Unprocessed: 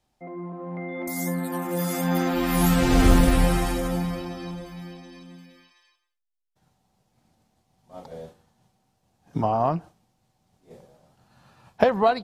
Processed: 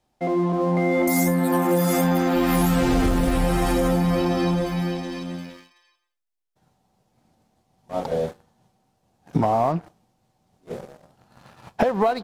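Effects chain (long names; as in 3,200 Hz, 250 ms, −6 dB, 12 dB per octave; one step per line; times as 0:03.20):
parametric band 460 Hz +4.5 dB 2.9 octaves
downward compressor 12 to 1, threshold −27 dBFS, peak gain reduction 18.5 dB
leveller curve on the samples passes 2
level +3.5 dB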